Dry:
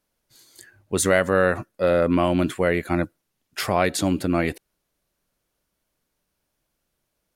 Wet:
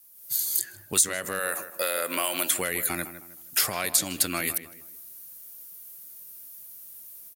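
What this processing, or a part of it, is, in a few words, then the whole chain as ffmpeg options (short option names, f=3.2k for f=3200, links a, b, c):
FM broadcast chain: -filter_complex "[0:a]asettb=1/sr,asplit=3[a][b][c];[a]atrim=end=1.394[d];[b]atrim=start=1.39:end=2.58,asetpts=PTS-STARTPTS,afade=t=in:d=0.004:c=qsin,afade=t=out:st=1.186:d=0.004:c=qsin,highpass=470[e];[c]atrim=start=2.576[f];[d][e]acrossfade=d=0.004:c1=hsin:c2=qsin[g];[g][f]acrossfade=d=0.004:c1=qsin:c2=hsin,highpass=75,dynaudnorm=f=140:g=3:m=9.5dB,acrossover=split=1300|7600[h][i][j];[h]acompressor=threshold=-31dB:ratio=4[k];[i]acompressor=threshold=-29dB:ratio=4[l];[j]acompressor=threshold=-49dB:ratio=4[m];[k][l][m]amix=inputs=3:normalize=0,aemphasis=mode=production:type=50fm,alimiter=limit=-17dB:level=0:latency=1:release=466,asoftclip=type=hard:threshold=-19dB,lowpass=f=15k:w=0.5412,lowpass=f=15k:w=1.3066,aemphasis=mode=production:type=50fm,asplit=2[n][o];[o]adelay=157,lowpass=f=1.9k:p=1,volume=-11dB,asplit=2[p][q];[q]adelay=157,lowpass=f=1.9k:p=1,volume=0.36,asplit=2[r][s];[s]adelay=157,lowpass=f=1.9k:p=1,volume=0.36,asplit=2[t][u];[u]adelay=157,lowpass=f=1.9k:p=1,volume=0.36[v];[n][p][r][t][v]amix=inputs=5:normalize=0"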